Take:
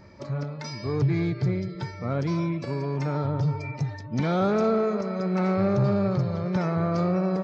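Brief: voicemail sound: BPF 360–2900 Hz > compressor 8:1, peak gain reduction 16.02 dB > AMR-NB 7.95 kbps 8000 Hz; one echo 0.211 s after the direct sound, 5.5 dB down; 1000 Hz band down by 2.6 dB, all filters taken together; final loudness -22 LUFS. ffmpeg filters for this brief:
-af "highpass=360,lowpass=2.9k,equalizer=f=1k:t=o:g=-3.5,aecho=1:1:211:0.531,acompressor=threshold=-38dB:ratio=8,volume=20.5dB" -ar 8000 -c:a libopencore_amrnb -b:a 7950

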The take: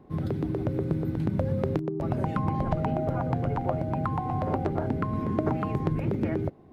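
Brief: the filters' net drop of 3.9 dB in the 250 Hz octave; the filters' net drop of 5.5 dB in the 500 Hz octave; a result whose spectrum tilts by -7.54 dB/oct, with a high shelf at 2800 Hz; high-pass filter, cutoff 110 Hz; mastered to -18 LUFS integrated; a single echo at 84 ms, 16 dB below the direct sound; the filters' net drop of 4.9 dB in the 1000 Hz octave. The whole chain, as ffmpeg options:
-af "highpass=110,equalizer=f=250:t=o:g=-3.5,equalizer=f=500:t=o:g=-5,equalizer=f=1k:t=o:g=-3.5,highshelf=f=2.8k:g=-6.5,aecho=1:1:84:0.158,volume=14.5dB"

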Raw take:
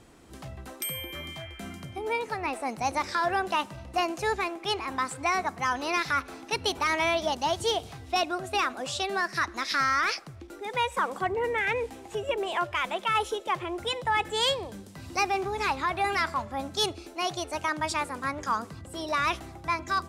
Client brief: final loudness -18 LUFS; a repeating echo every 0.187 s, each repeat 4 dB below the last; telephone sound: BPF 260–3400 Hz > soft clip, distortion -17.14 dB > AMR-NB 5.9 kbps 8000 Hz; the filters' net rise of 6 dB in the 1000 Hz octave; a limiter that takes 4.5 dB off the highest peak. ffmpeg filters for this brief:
-af "equalizer=f=1k:t=o:g=7.5,alimiter=limit=-15.5dB:level=0:latency=1,highpass=260,lowpass=3.4k,aecho=1:1:187|374|561|748|935|1122|1309|1496|1683:0.631|0.398|0.25|0.158|0.0994|0.0626|0.0394|0.0249|0.0157,asoftclip=threshold=-17.5dB,volume=10.5dB" -ar 8000 -c:a libopencore_amrnb -b:a 5900

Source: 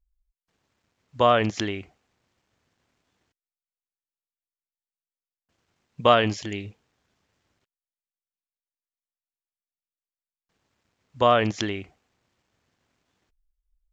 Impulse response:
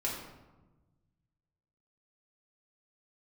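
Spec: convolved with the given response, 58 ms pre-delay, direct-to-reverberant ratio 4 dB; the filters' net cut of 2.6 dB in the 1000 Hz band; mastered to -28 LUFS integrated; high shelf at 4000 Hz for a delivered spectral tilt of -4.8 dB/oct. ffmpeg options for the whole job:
-filter_complex "[0:a]equalizer=f=1k:t=o:g=-4,highshelf=f=4k:g=4.5,asplit=2[a][b];[1:a]atrim=start_sample=2205,adelay=58[c];[b][c]afir=irnorm=-1:irlink=0,volume=-8.5dB[d];[a][d]amix=inputs=2:normalize=0,volume=-5dB"

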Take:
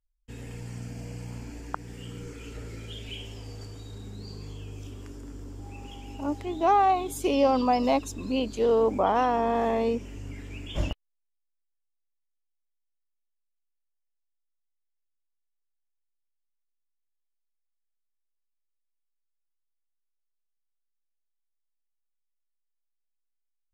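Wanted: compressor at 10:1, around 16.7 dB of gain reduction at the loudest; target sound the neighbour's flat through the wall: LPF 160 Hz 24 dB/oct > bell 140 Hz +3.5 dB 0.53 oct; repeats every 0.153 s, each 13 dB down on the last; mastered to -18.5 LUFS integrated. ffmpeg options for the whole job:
-af "acompressor=threshold=-35dB:ratio=10,lowpass=f=160:w=0.5412,lowpass=f=160:w=1.3066,equalizer=f=140:t=o:w=0.53:g=3.5,aecho=1:1:153|306|459:0.224|0.0493|0.0108,volume=26dB"

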